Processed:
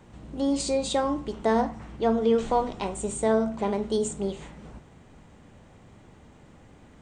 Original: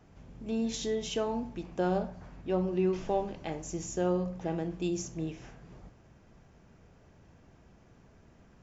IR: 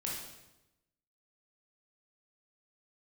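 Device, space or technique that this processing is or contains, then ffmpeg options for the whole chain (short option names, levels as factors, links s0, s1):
nightcore: -af "asetrate=54243,aresample=44100,volume=2.11"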